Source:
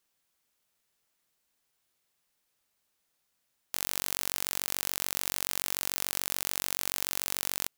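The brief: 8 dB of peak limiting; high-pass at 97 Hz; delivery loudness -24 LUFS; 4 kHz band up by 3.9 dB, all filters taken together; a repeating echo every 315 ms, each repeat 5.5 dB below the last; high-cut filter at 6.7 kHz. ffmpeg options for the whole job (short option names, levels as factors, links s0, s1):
-af "highpass=97,lowpass=6700,equalizer=f=4000:t=o:g=5.5,alimiter=limit=0.119:level=0:latency=1,aecho=1:1:315|630|945|1260|1575|1890|2205:0.531|0.281|0.149|0.079|0.0419|0.0222|0.0118,volume=6.31"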